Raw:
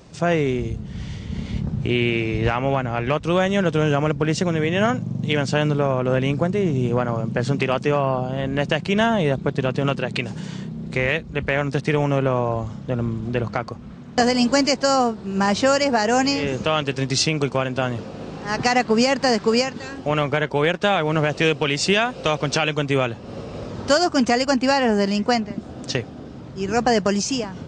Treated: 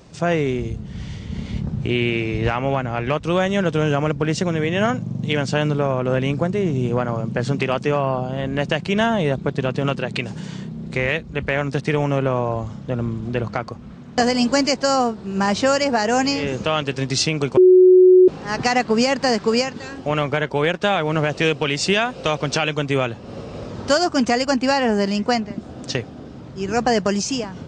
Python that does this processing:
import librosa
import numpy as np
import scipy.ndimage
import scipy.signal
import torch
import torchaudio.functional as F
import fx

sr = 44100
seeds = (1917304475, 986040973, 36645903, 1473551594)

y = fx.edit(x, sr, fx.bleep(start_s=17.57, length_s=0.71, hz=368.0, db=-6.5), tone=tone)